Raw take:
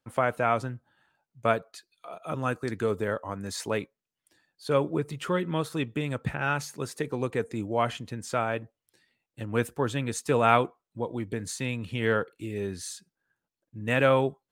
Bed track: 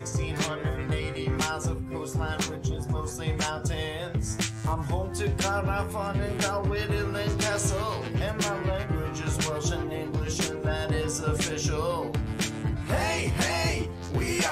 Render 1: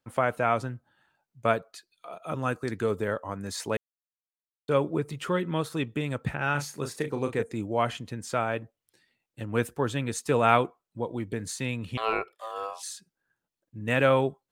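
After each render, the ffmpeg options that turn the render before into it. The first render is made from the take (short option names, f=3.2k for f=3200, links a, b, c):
-filter_complex "[0:a]asettb=1/sr,asplit=3[a][b][c];[a]atrim=end=6.514[d];[b]atrim=start=6.51:end=7.43,asetpts=PTS-STARTPTS,afade=t=in:d=0.004:c=qsin,afade=t=out:st=0.916:d=0.004:c=qsin,asplit=2[e][f];[f]adelay=35,volume=-8dB[g];[e][g]amix=inputs=2:normalize=0,atrim=end_sample=40572[h];[c]atrim=start=7.426[i];[d][h]acrossfade=d=0.004:c1=hsin:c2=qsin[j];[j][i]acrossfade=d=0.004:c1=qsin:c2=hsin,asettb=1/sr,asplit=3[k][l][m];[k]atrim=end=11.974[n];[l]atrim=start=11.97:end=12.83,asetpts=PTS-STARTPTS,afade=t=in:d=0.004:c=qsin,afade=t=out:st=0.856:d=0.004:c=qsin,aeval=exprs='val(0)*sin(2*PI*890*n/s)':c=same[o];[m]atrim=start=12.826[p];[n][o]acrossfade=d=0.004:c1=hsin:c2=qsin[q];[q][p]acrossfade=d=0.004:c1=qsin:c2=hsin,asplit=3[r][s][t];[r]atrim=end=3.77,asetpts=PTS-STARTPTS,afade=t=out:st=3.766:d=0.004:c=hsin[u];[s]atrim=start=3.77:end=4.68,asetpts=PTS-STARTPTS,volume=0[v];[t]atrim=start=4.68,asetpts=PTS-STARTPTS,afade=t=in:d=0.004:c=hsin[w];[u][v][w]concat=n=3:v=0:a=1"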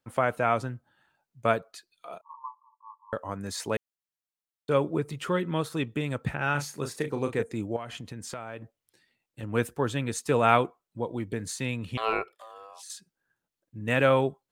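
-filter_complex "[0:a]asettb=1/sr,asplit=3[a][b][c];[a]atrim=end=2.214[d];[b]atrim=start=2.21:end=3.13,asetpts=PTS-STARTPTS,afade=t=in:d=0.004:c=qsin,afade=t=out:st=0.916:d=0.004:c=qsin,asuperpass=centerf=1000:order=20:qfactor=3.5[e];[c]atrim=start=3.126[f];[d][e]acrossfade=d=0.004:c1=hsin:c2=qsin[g];[g][f]acrossfade=d=0.004:c1=qsin:c2=hsin,asettb=1/sr,asplit=3[h][i][j];[h]atrim=end=7.764[k];[i]atrim=start=7.76:end=9.43,asetpts=PTS-STARTPTS,afade=t=in:d=0.004:c=qsin,afade=t=out:st=1.666:d=0.004:c=qsin,acompressor=threshold=-34dB:ratio=5:attack=3.2:release=140:knee=1:detection=peak[l];[j]atrim=start=9.426[m];[k][l]acrossfade=d=0.004:c1=hsin:c2=qsin[n];[n][m]acrossfade=d=0.004:c1=qsin:c2=hsin,asettb=1/sr,asplit=3[o][p][q];[o]atrim=end=12.304[r];[p]atrim=start=12.3:end=12.9,asetpts=PTS-STARTPTS,afade=t=in:d=0.004:c=qsin,afade=t=out:st=0.596:d=0.004:c=qsin,acompressor=threshold=-42dB:ratio=12:attack=3.2:release=140:knee=1:detection=peak[s];[q]atrim=start=12.896[t];[r][s]acrossfade=d=0.004:c1=hsin:c2=qsin[u];[u][t]acrossfade=d=0.004:c1=qsin:c2=hsin"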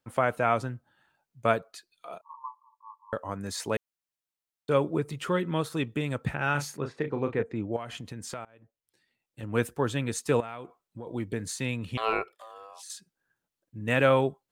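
-filter_complex "[0:a]asplit=3[a][b][c];[a]afade=t=out:st=6.76:d=0.02[d];[b]lowpass=2.5k,afade=t=in:st=6.76:d=0.02,afade=t=out:st=7.72:d=0.02[e];[c]afade=t=in:st=7.72:d=0.02[f];[d][e][f]amix=inputs=3:normalize=0,asettb=1/sr,asplit=3[g][h][i];[g]atrim=end=10.404[j];[h]atrim=start=10.4:end=11.07,asetpts=PTS-STARTPTS,afade=t=in:d=0.004:c=qsin,afade=t=out:st=0.666:d=0.004:c=qsin,acompressor=threshold=-36dB:ratio=6:attack=3.2:release=140:knee=1:detection=peak[k];[i]atrim=start=11.066[l];[j][k]acrossfade=d=0.004:c1=hsin:c2=qsin[m];[m][l]acrossfade=d=0.004:c1=qsin:c2=hsin,asplit=2[n][o];[n]atrim=end=8.45,asetpts=PTS-STARTPTS,afade=t=out:st=8.446:d=0.004:c=hsin:silence=0.0630957[p];[o]atrim=start=8.45,asetpts=PTS-STARTPTS,afade=t=in:d=1.14:silence=0.0630957[q];[p][q]concat=n=2:v=0:a=1"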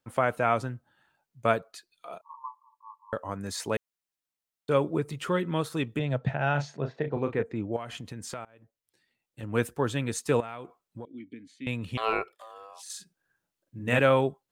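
-filter_complex "[0:a]asettb=1/sr,asplit=3[a][b][c];[a]atrim=end=5.994[d];[b]atrim=start=5.99:end=7.17,asetpts=PTS-STARTPTS,afade=t=in:d=0.004:c=qsin,afade=t=out:st=1.176:d=0.004:c=qsin,highpass=120,equalizer=f=130:t=q:w=4:g=8,equalizer=f=320:t=q:w=4:g=-4,equalizer=f=660:t=q:w=4:g=10,equalizer=f=1.2k:t=q:w=4:g=-6,equalizer=f=2.3k:t=q:w=4:g=-4,equalizer=f=4.8k:t=q:w=4:g=-5,lowpass=f=5.3k:w=0.5412,lowpass=f=5.3k:w=1.3066[e];[c]atrim=start=7.166[f];[d][e]acrossfade=d=0.004:c1=hsin:c2=qsin[g];[g][f]acrossfade=d=0.004:c1=qsin:c2=hsin,asettb=1/sr,asplit=3[h][i][j];[h]atrim=end=11.054[k];[i]atrim=start=11.05:end=11.67,asetpts=PTS-STARTPTS,afade=t=in:d=0.004:c=qsin,afade=t=out:st=0.616:d=0.004:c=qsin,asplit=3[l][m][n];[l]bandpass=f=270:t=q:w=8,volume=0dB[o];[m]bandpass=f=2.29k:t=q:w=8,volume=-6dB[p];[n]bandpass=f=3.01k:t=q:w=8,volume=-9dB[q];[o][p][q]amix=inputs=3:normalize=0[r];[j]atrim=start=11.666[s];[k][r]acrossfade=d=0.004:c1=hsin:c2=qsin[t];[t][s]acrossfade=d=0.004:c1=qsin:c2=hsin,asettb=1/sr,asplit=3[u][v][w];[u]atrim=end=12.824[x];[v]atrim=start=12.82:end=13.99,asetpts=PTS-STARTPTS,afade=t=in:d=0.004:c=qsin,afade=t=out:st=1.166:d=0.004:c=qsin,asplit=2[y][z];[z]adelay=41,volume=-4dB[aa];[y][aa]amix=inputs=2:normalize=0,atrim=end_sample=51597[ab];[w]atrim=start=13.986[ac];[x][ab]acrossfade=d=0.004:c1=hsin:c2=qsin[ad];[ad][ac]acrossfade=d=0.004:c1=qsin:c2=hsin"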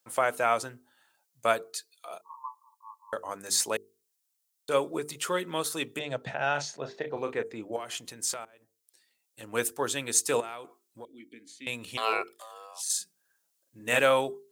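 -af "bass=f=250:g=-15,treble=f=4k:g=13,bandreject=f=50:t=h:w=6,bandreject=f=100:t=h:w=6,bandreject=f=150:t=h:w=6,bandreject=f=200:t=h:w=6,bandreject=f=250:t=h:w=6,bandreject=f=300:t=h:w=6,bandreject=f=350:t=h:w=6,bandreject=f=400:t=h:w=6,bandreject=f=450:t=h:w=6"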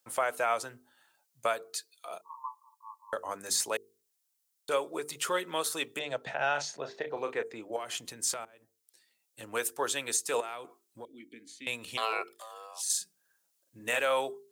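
-filter_complex "[0:a]acrossover=split=370|6000[a][b][c];[a]acompressor=threshold=-49dB:ratio=6[d];[d][b][c]amix=inputs=3:normalize=0,alimiter=limit=-18dB:level=0:latency=1:release=230"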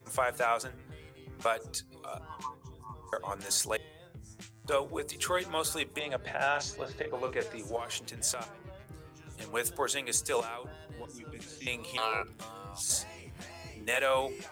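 -filter_complex "[1:a]volume=-20.5dB[a];[0:a][a]amix=inputs=2:normalize=0"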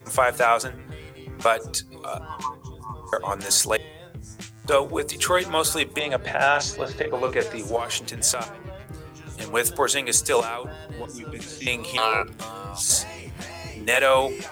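-af "volume=10dB"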